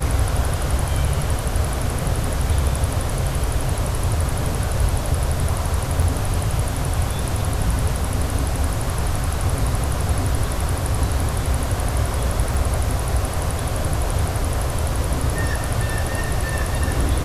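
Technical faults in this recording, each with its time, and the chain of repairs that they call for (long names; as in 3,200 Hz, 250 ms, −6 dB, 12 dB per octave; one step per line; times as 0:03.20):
0:06.02: drop-out 3.4 ms
0:12.54: drop-out 4.9 ms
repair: repair the gap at 0:06.02, 3.4 ms
repair the gap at 0:12.54, 4.9 ms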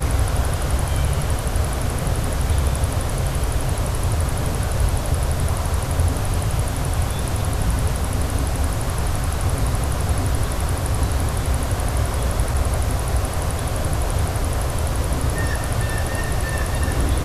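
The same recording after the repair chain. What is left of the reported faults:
none of them is left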